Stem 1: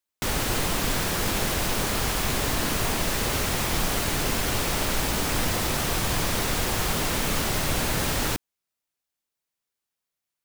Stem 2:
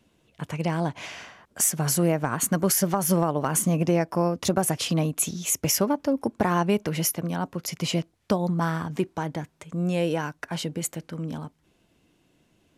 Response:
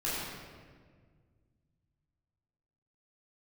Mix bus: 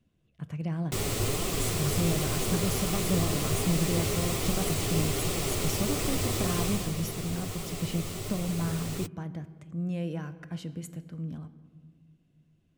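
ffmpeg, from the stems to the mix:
-filter_complex "[0:a]equalizer=frequency=100:width_type=o:width=0.33:gain=11,equalizer=frequency=400:width_type=o:width=0.33:gain=9,equalizer=frequency=1600:width_type=o:width=0.33:gain=-10,equalizer=frequency=8000:width_type=o:width=0.33:gain=5,flanger=delay=5.3:depth=4.9:regen=-32:speed=1.3:shape=triangular,adelay=700,volume=-2dB,afade=type=out:start_time=6.63:duration=0.3:silence=0.421697[link_01];[1:a]bass=frequency=250:gain=11,treble=frequency=4000:gain=-3,volume=-14dB,asplit=2[link_02][link_03];[link_03]volume=-19.5dB[link_04];[2:a]atrim=start_sample=2205[link_05];[link_04][link_05]afir=irnorm=-1:irlink=0[link_06];[link_01][link_02][link_06]amix=inputs=3:normalize=0,bandreject=frequency=900:width=6.6"

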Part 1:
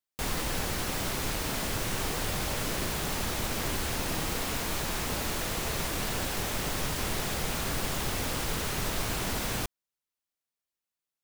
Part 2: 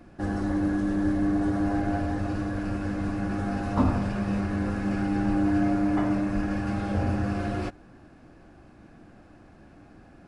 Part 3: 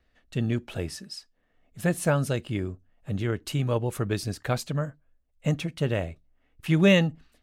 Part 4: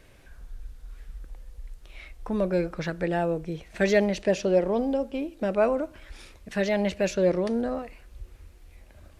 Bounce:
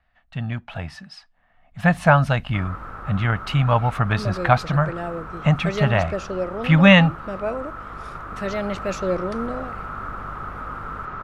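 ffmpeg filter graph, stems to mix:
ffmpeg -i stem1.wav -i stem2.wav -i stem3.wav -i stem4.wav -filter_complex "[0:a]lowpass=frequency=1300:width_type=q:width=11,adelay=2350,volume=-17dB[link_01];[2:a]firequalizer=gain_entry='entry(180,0);entry(380,-18);entry(710,8);entry(7200,-16);entry(12000,-20)':delay=0.05:min_phase=1,volume=0.5dB[link_02];[3:a]aeval=exprs='val(0)+0.0126*(sin(2*PI*50*n/s)+sin(2*PI*2*50*n/s)/2+sin(2*PI*3*50*n/s)/3+sin(2*PI*4*50*n/s)/4+sin(2*PI*5*50*n/s)/5)':channel_layout=same,adelay=1850,volume=-12dB[link_03];[link_01][link_02][link_03]amix=inputs=3:normalize=0,dynaudnorm=framelen=210:gausssize=11:maxgain=11dB" out.wav

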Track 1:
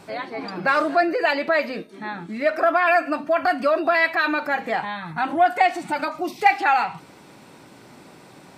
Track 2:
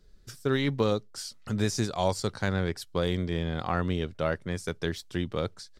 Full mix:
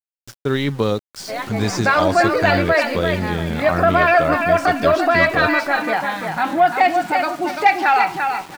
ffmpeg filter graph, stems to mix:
ffmpeg -i stem1.wav -i stem2.wav -filter_complex "[0:a]adelay=1200,volume=-2.5dB,asplit=2[link_01][link_02];[link_02]volume=-6dB[link_03];[1:a]volume=0.5dB[link_04];[link_03]aecho=0:1:342|684|1026|1368:1|0.25|0.0625|0.0156[link_05];[link_01][link_04][link_05]amix=inputs=3:normalize=0,lowpass=8000,acontrast=54,aeval=exprs='val(0)*gte(abs(val(0)),0.02)':channel_layout=same" out.wav

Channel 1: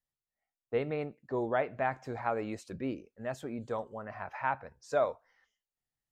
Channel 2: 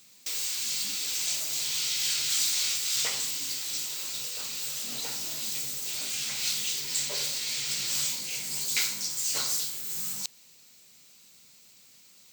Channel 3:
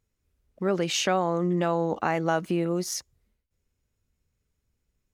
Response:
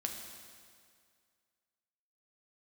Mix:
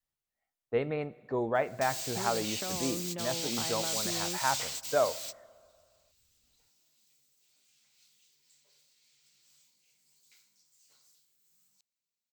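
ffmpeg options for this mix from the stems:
-filter_complex "[0:a]adynamicequalizer=threshold=0.00708:dfrequency=370:dqfactor=1.4:tfrequency=370:tqfactor=1.4:attack=5:release=100:ratio=0.375:range=2:mode=cutabove:tftype=bell,volume=0.5dB,asplit=3[link_01][link_02][link_03];[link_02]volume=-14.5dB[link_04];[1:a]adelay=1550,volume=-7dB[link_05];[2:a]equalizer=frequency=94:width=1.5:gain=5.5,acompressor=threshold=-32dB:ratio=4,adelay=1550,volume=-6dB[link_06];[link_03]apad=whole_len=611729[link_07];[link_05][link_07]sidechaingate=range=-30dB:threshold=-56dB:ratio=16:detection=peak[link_08];[3:a]atrim=start_sample=2205[link_09];[link_04][link_09]afir=irnorm=-1:irlink=0[link_10];[link_01][link_08][link_06][link_10]amix=inputs=4:normalize=0"

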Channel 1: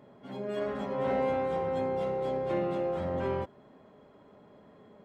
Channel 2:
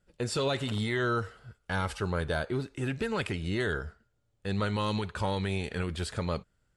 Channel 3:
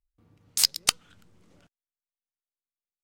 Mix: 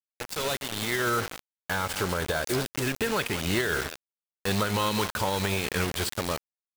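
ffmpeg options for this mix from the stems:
ffmpeg -i stem1.wav -i stem2.wav -i stem3.wav -filter_complex "[0:a]volume=-17.5dB,asplit=2[link_01][link_02];[link_02]volume=-8dB[link_03];[1:a]lowshelf=frequency=330:gain=-8,dynaudnorm=framelen=400:gausssize=5:maxgain=10dB,volume=-1dB,asplit=2[link_04][link_05];[link_05]volume=-13.5dB[link_06];[2:a]acompressor=threshold=-35dB:ratio=2,adelay=1900,volume=-5dB[link_07];[link_03][link_06]amix=inputs=2:normalize=0,aecho=0:1:195:1[link_08];[link_01][link_04][link_07][link_08]amix=inputs=4:normalize=0,acrusher=bits=4:mix=0:aa=0.000001,alimiter=limit=-17dB:level=0:latency=1:release=114" out.wav

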